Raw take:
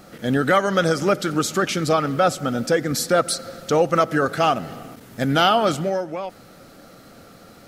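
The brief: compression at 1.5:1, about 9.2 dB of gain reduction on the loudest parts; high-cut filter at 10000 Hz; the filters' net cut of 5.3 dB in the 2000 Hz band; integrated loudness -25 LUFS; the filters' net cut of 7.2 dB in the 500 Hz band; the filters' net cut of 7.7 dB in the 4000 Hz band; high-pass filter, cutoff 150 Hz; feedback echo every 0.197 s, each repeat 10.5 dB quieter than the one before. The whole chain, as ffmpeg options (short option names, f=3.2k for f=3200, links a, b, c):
-af "highpass=150,lowpass=10k,equalizer=f=500:t=o:g=-8.5,equalizer=f=2k:t=o:g=-5.5,equalizer=f=4k:t=o:g=-8.5,acompressor=threshold=-44dB:ratio=1.5,aecho=1:1:197|394|591:0.299|0.0896|0.0269,volume=8.5dB"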